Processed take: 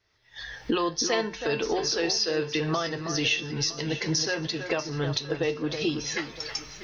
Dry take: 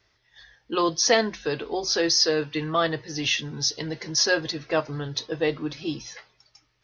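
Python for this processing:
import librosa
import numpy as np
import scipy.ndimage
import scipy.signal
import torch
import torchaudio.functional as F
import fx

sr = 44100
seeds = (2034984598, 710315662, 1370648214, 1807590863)

y = fx.recorder_agc(x, sr, target_db=-11.0, rise_db_per_s=44.0, max_gain_db=30)
y = fx.comb_fb(y, sr, f0_hz=450.0, decay_s=0.54, harmonics='all', damping=0.0, mix_pct=60)
y = fx.dynamic_eq(y, sr, hz=2700.0, q=2.8, threshold_db=-41.0, ratio=4.0, max_db=4)
y = fx.comb_fb(y, sr, f0_hz=87.0, decay_s=0.16, harmonics='all', damping=0.0, mix_pct=40)
y = fx.echo_alternate(y, sr, ms=321, hz=2000.0, feedback_pct=56, wet_db=-8)
y = y * librosa.db_to_amplitude(2.0)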